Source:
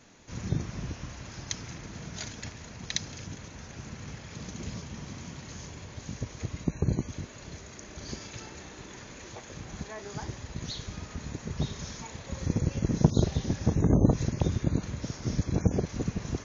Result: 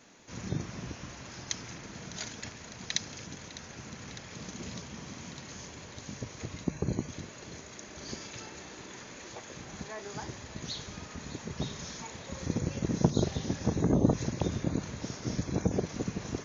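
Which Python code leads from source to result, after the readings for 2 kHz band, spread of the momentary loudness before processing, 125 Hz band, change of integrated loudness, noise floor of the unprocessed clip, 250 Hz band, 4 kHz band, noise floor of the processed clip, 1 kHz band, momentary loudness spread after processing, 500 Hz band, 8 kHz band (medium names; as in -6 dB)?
+0.5 dB, 17 LU, -5.0 dB, -3.5 dB, -47 dBFS, -2.0 dB, +0.5 dB, -48 dBFS, 0.0 dB, 15 LU, -0.5 dB, no reading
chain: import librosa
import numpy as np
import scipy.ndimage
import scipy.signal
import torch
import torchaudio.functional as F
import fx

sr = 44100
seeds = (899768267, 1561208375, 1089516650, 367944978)

p1 = fx.low_shelf(x, sr, hz=96.0, db=-11.5)
p2 = fx.hum_notches(p1, sr, base_hz=50, count=3)
y = p2 + fx.echo_thinned(p2, sr, ms=604, feedback_pct=81, hz=420.0, wet_db=-15.5, dry=0)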